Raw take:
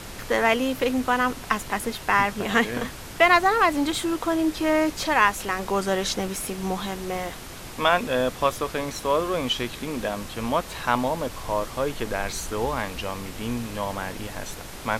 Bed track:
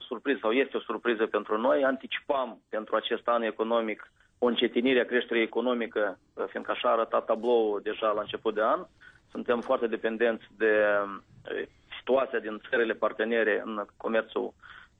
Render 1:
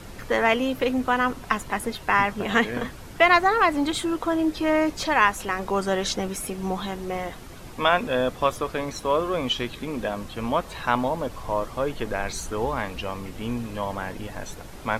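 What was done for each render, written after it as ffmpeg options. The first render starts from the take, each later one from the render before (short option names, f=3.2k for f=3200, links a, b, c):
-af "afftdn=nr=8:nf=-39"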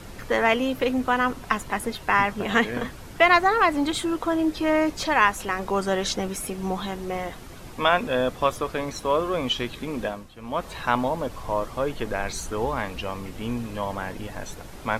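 -filter_complex "[0:a]asplit=2[a][b];[a]atrim=end=10.35,asetpts=PTS-STARTPTS,afade=t=out:st=10.06:d=0.29:c=qua:silence=0.251189[c];[b]atrim=start=10.35,asetpts=PTS-STARTPTS,afade=t=in:d=0.29:c=qua:silence=0.251189[d];[c][d]concat=n=2:v=0:a=1"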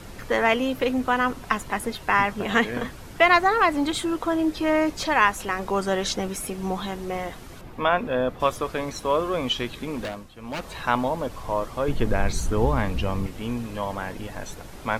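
-filter_complex "[0:a]asettb=1/sr,asplit=3[a][b][c];[a]atrim=end=7.614[d];[b]atrim=start=7.61:end=8.4,asetpts=PTS-STARTPTS,afade=t=in:d=0.004:c=qsin,afade=t=out:st=0.786:d=0.004:c=qsin,equalizer=f=8.1k:t=o:w=2.3:g=-12.5[e];[c]atrim=start=8.396[f];[d][e]acrossfade=d=0.004:c1=hsin:c2=qsin[g];[g][f]acrossfade=d=0.004:c1=qsin:c2=hsin,asettb=1/sr,asplit=3[h][i][j];[h]atrim=end=9.964[k];[i]atrim=start=9.96:end=10.79,asetpts=PTS-STARTPTS,afade=t=in:d=0.004:c=qsin,afade=t=out:st=0.826:d=0.004:c=qsin,aeval=exprs='0.0596*(abs(mod(val(0)/0.0596+3,4)-2)-1)':c=same[l];[j]atrim=start=10.786[m];[k][l]acrossfade=d=0.004:c1=hsin:c2=qsin[n];[n][m]acrossfade=d=0.004:c1=qsin:c2=hsin,asettb=1/sr,asplit=3[o][p][q];[o]atrim=end=11.884[r];[p]atrim=start=11.88:end=13.27,asetpts=PTS-STARTPTS,afade=t=in:d=0.004:c=qsin,afade=t=out:st=1.386:d=0.004:c=qsin,lowshelf=f=280:g=12[s];[q]atrim=start=13.266[t];[r][s]acrossfade=d=0.004:c1=hsin:c2=qsin[u];[u][t]acrossfade=d=0.004:c1=qsin:c2=hsin"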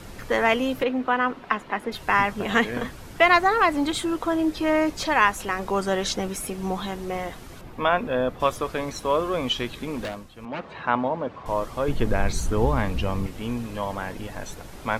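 -filter_complex "[0:a]asettb=1/sr,asplit=3[a][b][c];[a]atrim=end=0.834[d];[b]atrim=start=0.83:end=1.92,asetpts=PTS-STARTPTS,afade=t=in:d=0.004:c=qsin,afade=t=out:st=1.086:d=0.004:c=qsin,acrossover=split=180 3800:gain=0.178 1 0.112[e][f][g];[e][f][g]amix=inputs=3:normalize=0[h];[c]atrim=start=1.916[i];[d][h]acrossfade=d=0.004:c1=hsin:c2=qsin[j];[j][i]acrossfade=d=0.004:c1=qsin:c2=hsin,asettb=1/sr,asplit=3[k][l][m];[k]atrim=end=10.454[n];[l]atrim=start=10.45:end=11.46,asetpts=PTS-STARTPTS,afade=t=in:d=0.004:c=qsin,afade=t=out:st=1.006:d=0.004:c=qsin,highpass=130,lowpass=2.4k[o];[m]atrim=start=11.456[p];[n][o]acrossfade=d=0.004:c1=hsin:c2=qsin[q];[q][p]acrossfade=d=0.004:c1=qsin:c2=hsin"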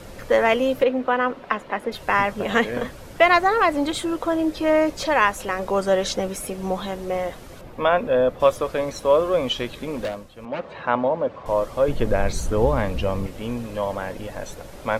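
-af "equalizer=f=550:w=3.4:g=9"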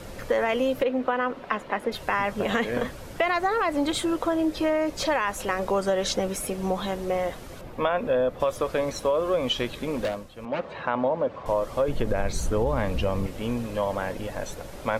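-af "alimiter=limit=-10dB:level=0:latency=1:release=27,acompressor=threshold=-20dB:ratio=6"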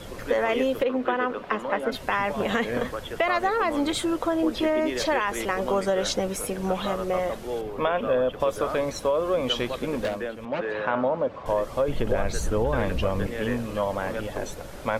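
-filter_complex "[1:a]volume=-7dB[a];[0:a][a]amix=inputs=2:normalize=0"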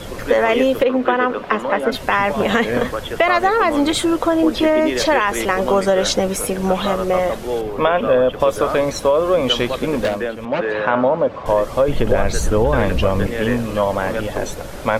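-af "volume=8.5dB,alimiter=limit=-2dB:level=0:latency=1"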